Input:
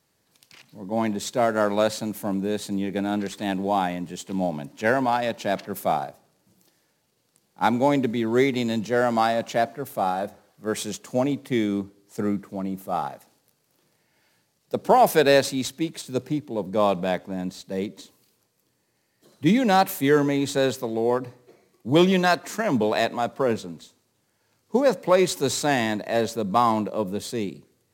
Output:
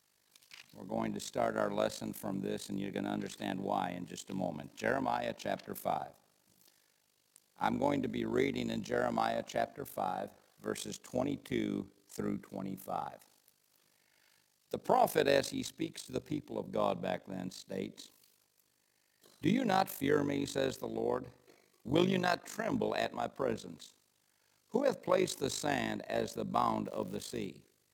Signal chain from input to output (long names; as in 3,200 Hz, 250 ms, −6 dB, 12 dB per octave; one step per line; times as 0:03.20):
amplitude modulation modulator 50 Hz, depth 70%
0:26.84–0:27.45: surface crackle 190 per second −38 dBFS
one half of a high-frequency compander encoder only
level −8 dB